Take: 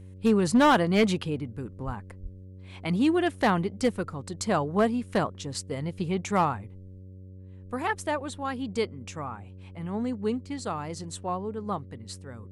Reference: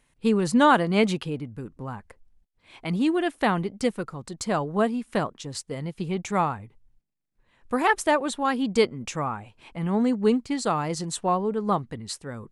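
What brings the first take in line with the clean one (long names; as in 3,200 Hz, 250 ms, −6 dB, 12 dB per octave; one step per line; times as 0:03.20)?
clipped peaks rebuilt −15 dBFS
hum removal 93.7 Hz, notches 6
high-pass at the plosives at 0:01.85/0:02.22
level 0 dB, from 0:07.29 +7.5 dB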